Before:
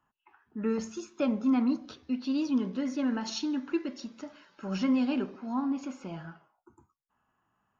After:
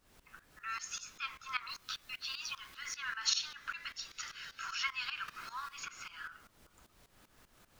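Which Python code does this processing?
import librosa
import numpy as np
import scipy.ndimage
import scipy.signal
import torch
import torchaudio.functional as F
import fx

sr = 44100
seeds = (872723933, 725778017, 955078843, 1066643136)

y = scipy.signal.sosfilt(scipy.signal.butter(8, 1200.0, 'highpass', fs=sr, output='sos'), x)
y = fx.quant_dither(y, sr, seeds[0], bits=12, dither='triangular', at=(1.68, 2.93), fade=0.02)
y = fx.high_shelf(y, sr, hz=2000.0, db=10.0, at=(4.11, 4.75))
y = fx.dmg_noise_colour(y, sr, seeds[1], colour='pink', level_db=-71.0)
y = fx.tremolo_shape(y, sr, shape='saw_up', hz=5.1, depth_pct=85)
y = fx.band_squash(y, sr, depth_pct=70, at=(5.28, 6.03))
y = y * 10.0 ** (10.5 / 20.0)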